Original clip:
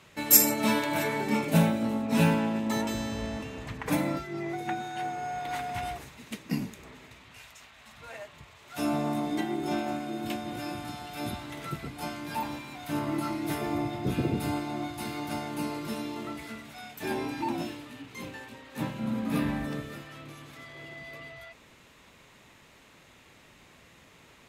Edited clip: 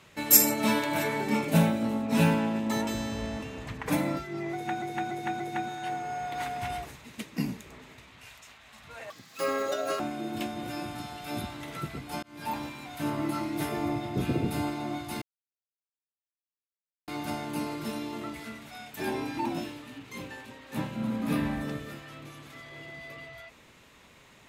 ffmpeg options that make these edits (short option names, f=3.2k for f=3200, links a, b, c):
-filter_complex "[0:a]asplit=8[a][b][c][d][e][f][g][h];[a]atrim=end=4.822[i];[b]atrim=start=4.528:end=4.822[j];[c]atrim=start=4.528:end=4.822[k];[d]atrim=start=4.528:end=8.234[l];[e]atrim=start=8.23:end=9.89,asetpts=PTS-STARTPTS,asetrate=81585,aresample=44100[m];[f]atrim=start=9.886:end=12.12,asetpts=PTS-STARTPTS,afade=t=out:st=2.23:d=0.004:c=hsin[n];[g]atrim=start=12.12:end=15.11,asetpts=PTS-STARTPTS,afade=t=in:d=0.3,afade=t=out:st=2.986:d=0.004:c=hsin,apad=pad_dur=1.86[o];[h]atrim=start=15.11,asetpts=PTS-STARTPTS,afade=t=in:d=0.004:c=hsin[p];[i][j]acrossfade=d=0.004:c1=hsin:c2=hsin[q];[q][k]acrossfade=d=0.004:c1=hsin:c2=hsin[r];[r][l]acrossfade=d=0.004:c1=hsin:c2=hsin[s];[s][m]acrossfade=d=0.004:c1=hsin:c2=hsin[t];[n][o][p]concat=n=3:v=0:a=1[u];[t][u]acrossfade=d=0.004:c1=hsin:c2=hsin"